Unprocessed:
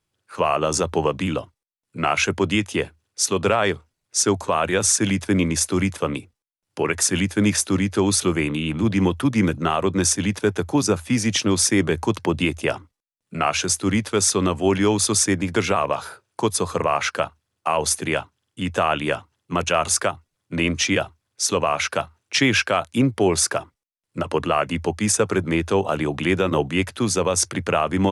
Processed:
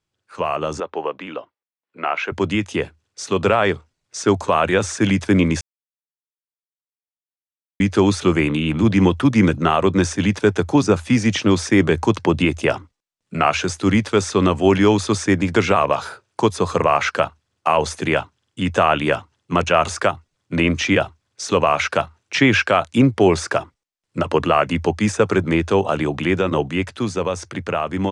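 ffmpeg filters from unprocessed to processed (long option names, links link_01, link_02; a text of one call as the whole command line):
ffmpeg -i in.wav -filter_complex "[0:a]asettb=1/sr,asplit=3[link_01][link_02][link_03];[link_01]atrim=end=0.804[link_04];[link_02]atrim=start=0.8:end=2.32,asetpts=PTS-STARTPTS,afade=type=in:duration=0.004:curve=qsin,afade=type=out:start_time=1.516:duration=0.004:curve=qsin,highpass=400,lowpass=2700[link_05];[link_03]atrim=start=2.316[link_06];[link_04][link_05]acrossfade=duration=0.004:curve1=hsin:curve2=qsin[link_07];[link_07][link_06]acrossfade=duration=0.004:curve1=qsin:curve2=hsin,asplit=3[link_08][link_09][link_10];[link_08]atrim=end=5.61,asetpts=PTS-STARTPTS,afade=type=out:start_time=5.606:duration=0.004:curve=hsin[link_11];[link_09]atrim=start=5.61:end=7.8,asetpts=PTS-STARTPTS,volume=0[link_12];[link_10]atrim=start=7.8,asetpts=PTS-STARTPTS,afade=type=in:duration=0.004:curve=hsin[link_13];[link_11][link_12][link_13]concat=n=3:v=0:a=1,acrossover=split=2800[link_14][link_15];[link_15]acompressor=threshold=-32dB:ratio=4:attack=1:release=60[link_16];[link_14][link_16]amix=inputs=2:normalize=0,lowpass=frequency=8300:width=0.5412,lowpass=frequency=8300:width=1.3066,dynaudnorm=framelen=510:gausssize=11:maxgain=10dB,volume=-2dB" out.wav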